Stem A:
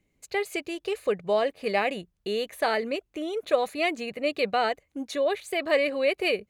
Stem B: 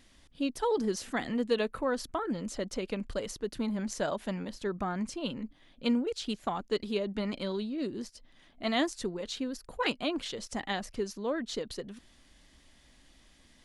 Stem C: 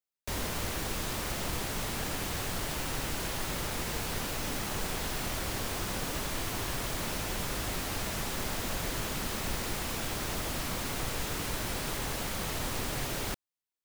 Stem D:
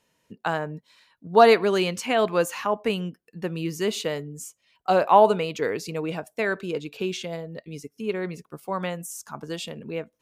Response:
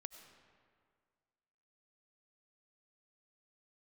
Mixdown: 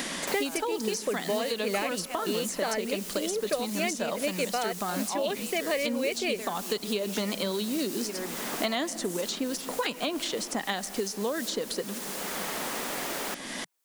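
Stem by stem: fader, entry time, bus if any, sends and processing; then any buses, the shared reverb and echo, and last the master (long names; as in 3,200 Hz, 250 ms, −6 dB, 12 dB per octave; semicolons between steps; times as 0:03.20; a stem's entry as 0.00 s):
−4.5 dB, 0.00 s, no bus, no send, no processing
+1.5 dB, 0.00 s, bus A, send −7 dB, no processing
−17.0 dB, 0.00 s, bus A, no send, no processing
−17.0 dB, 0.00 s, bus A, no send, no processing
bus A: 0.0 dB, bass and treble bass −15 dB, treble +13 dB; downward compressor, threshold −31 dBFS, peak gain reduction 10 dB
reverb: on, RT60 1.9 s, pre-delay 55 ms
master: low shelf with overshoot 140 Hz −6 dB, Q 3; multiband upward and downward compressor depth 100%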